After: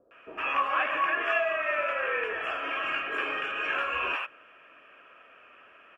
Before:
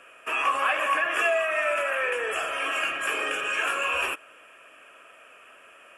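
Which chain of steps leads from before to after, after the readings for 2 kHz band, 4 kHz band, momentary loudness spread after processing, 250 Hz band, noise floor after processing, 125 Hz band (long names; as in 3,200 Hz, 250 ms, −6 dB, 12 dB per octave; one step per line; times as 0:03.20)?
−3.0 dB, −5.0 dB, 5 LU, −1.0 dB, −55 dBFS, can't be measured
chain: high-frequency loss of the air 280 metres
multiband delay without the direct sound lows, highs 110 ms, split 600 Hz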